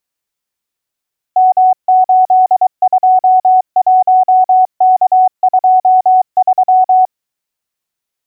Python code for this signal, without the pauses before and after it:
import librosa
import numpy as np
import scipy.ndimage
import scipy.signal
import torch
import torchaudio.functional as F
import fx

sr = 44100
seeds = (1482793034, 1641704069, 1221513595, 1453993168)

y = fx.morse(sr, text='M821K23', wpm=23, hz=744.0, level_db=-4.5)